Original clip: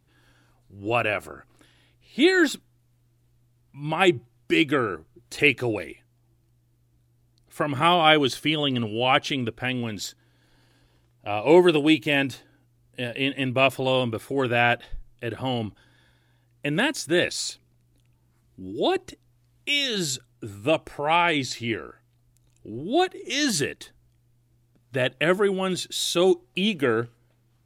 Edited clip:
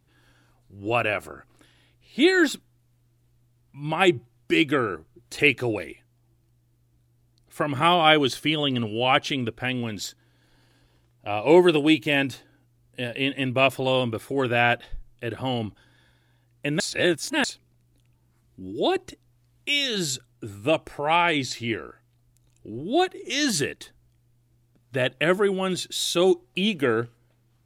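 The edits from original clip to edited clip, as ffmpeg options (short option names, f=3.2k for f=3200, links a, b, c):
-filter_complex "[0:a]asplit=3[a][b][c];[a]atrim=end=16.802[d];[b]atrim=start=16.798:end=17.442,asetpts=PTS-STARTPTS,areverse[e];[c]atrim=start=17.438[f];[d][e]acrossfade=d=0.004:c1=hsin:c2=hsin[g];[g][f]acrossfade=d=0.004:c1=hsin:c2=hsin"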